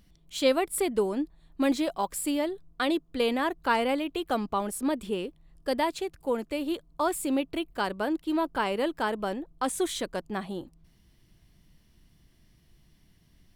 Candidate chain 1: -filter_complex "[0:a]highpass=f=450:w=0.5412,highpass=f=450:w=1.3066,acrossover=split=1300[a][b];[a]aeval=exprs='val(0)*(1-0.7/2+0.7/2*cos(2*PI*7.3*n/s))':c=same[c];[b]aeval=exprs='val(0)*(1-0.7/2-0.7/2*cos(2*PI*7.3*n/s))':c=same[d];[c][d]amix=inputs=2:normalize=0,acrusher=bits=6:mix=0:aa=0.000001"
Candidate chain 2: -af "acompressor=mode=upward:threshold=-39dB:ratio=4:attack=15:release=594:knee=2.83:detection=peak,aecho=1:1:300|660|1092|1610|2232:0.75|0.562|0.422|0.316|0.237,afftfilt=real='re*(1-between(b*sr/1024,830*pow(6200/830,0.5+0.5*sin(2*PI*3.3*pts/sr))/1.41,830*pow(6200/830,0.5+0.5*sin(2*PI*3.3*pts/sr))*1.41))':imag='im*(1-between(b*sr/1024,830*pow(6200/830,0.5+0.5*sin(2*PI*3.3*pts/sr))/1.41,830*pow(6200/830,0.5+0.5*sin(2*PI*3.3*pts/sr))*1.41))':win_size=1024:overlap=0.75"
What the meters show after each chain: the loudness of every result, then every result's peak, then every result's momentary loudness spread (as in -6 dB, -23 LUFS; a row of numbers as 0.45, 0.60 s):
-35.0, -27.0 LUFS; -14.5, -10.0 dBFS; 10, 14 LU